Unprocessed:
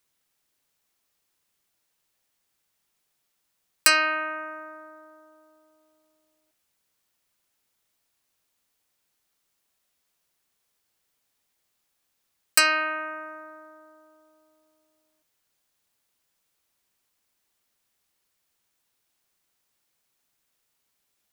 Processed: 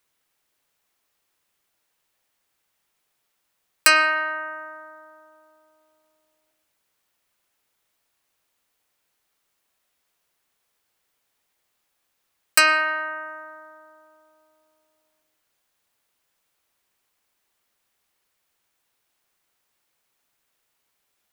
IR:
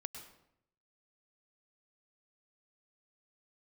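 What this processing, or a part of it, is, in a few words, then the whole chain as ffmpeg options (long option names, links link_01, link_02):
filtered reverb send: -filter_complex "[0:a]asplit=2[link_01][link_02];[link_02]highpass=310,lowpass=3700[link_03];[1:a]atrim=start_sample=2205[link_04];[link_03][link_04]afir=irnorm=-1:irlink=0,volume=-2.5dB[link_05];[link_01][link_05]amix=inputs=2:normalize=0,volume=1dB"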